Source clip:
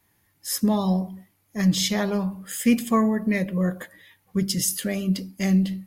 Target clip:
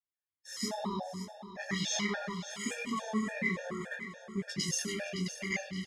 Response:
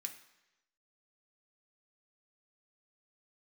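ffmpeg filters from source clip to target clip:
-filter_complex "[0:a]agate=range=0.0224:threshold=0.00562:ratio=3:detection=peak,lowpass=3900,lowshelf=f=410:g=-9,acompressor=threshold=0.0398:ratio=6,flanger=delay=19:depth=4.1:speed=1.1,aecho=1:1:567|1134|1701|2268|2835:0.251|0.126|0.0628|0.0314|0.0157,asplit=2[s0][s1];[1:a]atrim=start_sample=2205,asetrate=36603,aresample=44100,adelay=103[s2];[s1][s2]afir=irnorm=-1:irlink=0,volume=2.11[s3];[s0][s3]amix=inputs=2:normalize=0,afftfilt=real='re*gt(sin(2*PI*3.5*pts/sr)*(1-2*mod(floor(b*sr/1024/470),2)),0)':imag='im*gt(sin(2*PI*3.5*pts/sr)*(1-2*mod(floor(b*sr/1024/470),2)),0)':win_size=1024:overlap=0.75"

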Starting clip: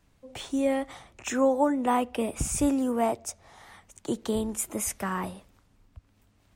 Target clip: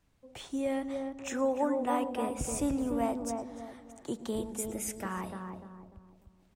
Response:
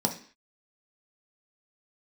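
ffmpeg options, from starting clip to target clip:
-filter_complex "[0:a]asettb=1/sr,asplit=3[s0][s1][s2];[s0]atrim=end=4.494[s3];[s1]atrim=start=4.49:end=5.03,asetpts=PTS-STARTPTS,afade=t=in:d=0.004:c=qsin,afade=t=out:st=0.536:d=0.004:c=qsin,asuperstop=centerf=1100:order=4:qfactor=3[s4];[s2]atrim=start=5.026[s5];[s3][s4]acrossfade=d=0.004:c1=hsin:c2=qsin[s6];[s6][s5]acrossfade=d=0.004:c1=qsin:c2=hsin,asplit=2[s7][s8];[s8]adelay=297,lowpass=f=980:p=1,volume=0.668,asplit=2[s9][s10];[s10]adelay=297,lowpass=f=980:p=1,volume=0.42,asplit=2[s11][s12];[s12]adelay=297,lowpass=f=980:p=1,volume=0.42,asplit=2[s13][s14];[s14]adelay=297,lowpass=f=980:p=1,volume=0.42,asplit=2[s15][s16];[s16]adelay=297,lowpass=f=980:p=1,volume=0.42[s17];[s7][s9][s11][s13][s15][s17]amix=inputs=6:normalize=0,asplit=2[s18][s19];[1:a]atrim=start_sample=2205,adelay=108[s20];[s19][s20]afir=irnorm=-1:irlink=0,volume=0.0422[s21];[s18][s21]amix=inputs=2:normalize=0,volume=0.473"

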